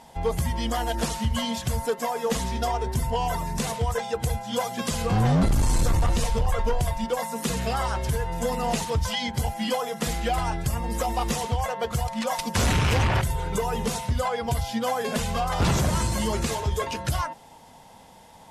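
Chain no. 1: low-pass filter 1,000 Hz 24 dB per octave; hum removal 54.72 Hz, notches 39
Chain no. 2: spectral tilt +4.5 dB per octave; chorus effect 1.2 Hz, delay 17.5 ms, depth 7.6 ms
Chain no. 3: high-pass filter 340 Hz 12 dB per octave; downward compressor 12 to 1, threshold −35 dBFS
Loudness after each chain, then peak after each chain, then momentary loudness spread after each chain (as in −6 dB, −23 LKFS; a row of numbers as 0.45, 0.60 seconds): −28.0, −25.5, −38.5 LKFS; −12.5, −8.5, −21.0 dBFS; 6, 6, 2 LU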